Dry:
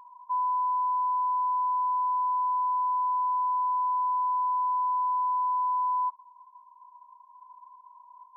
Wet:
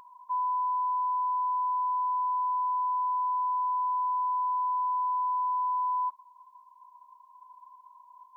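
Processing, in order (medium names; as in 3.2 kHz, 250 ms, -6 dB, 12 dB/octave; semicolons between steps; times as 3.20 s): peaking EQ 920 Hz -12.5 dB 0.49 oct; trim +8 dB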